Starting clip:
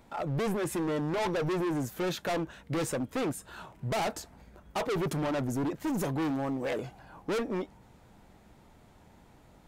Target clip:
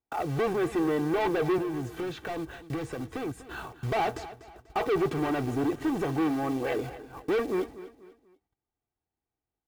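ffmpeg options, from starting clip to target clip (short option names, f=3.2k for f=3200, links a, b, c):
-filter_complex "[0:a]lowpass=11k,bass=f=250:g=1,treble=f=4k:g=-9,alimiter=level_in=9dB:limit=-24dB:level=0:latency=1:release=131,volume=-9dB,agate=range=-42dB:threshold=-49dB:ratio=16:detection=peak,highpass=f=45:p=1,acrusher=bits=4:mode=log:mix=0:aa=0.000001,asettb=1/sr,asplit=3[a][b][c];[a]atrim=end=1.584[d];[b]atrim=start=1.58:end=3.79,asetpts=PTS-STARTPTS,afade=t=in:d=0.004:c=qsin,afade=t=out:st=2.206:d=0.004:c=qsin,acrossover=split=170[e][f];[f]acompressor=threshold=-44dB:ratio=2.5[g];[e][g]amix=inputs=2:normalize=0[h];[c]atrim=start=3.786[i];[d][h]acrossfade=d=0.004:c1=hsin:c2=qsin[j];[j][i]acrossfade=d=0.004:c1=qsin:c2=hsin,aecho=1:1:2.6:0.55,acrossover=split=4000[k][l];[l]acompressor=threshold=-56dB:ratio=4:attack=1:release=60[m];[k][m]amix=inputs=2:normalize=0,aecho=1:1:244|488|732:0.168|0.0604|0.0218,volume=7.5dB"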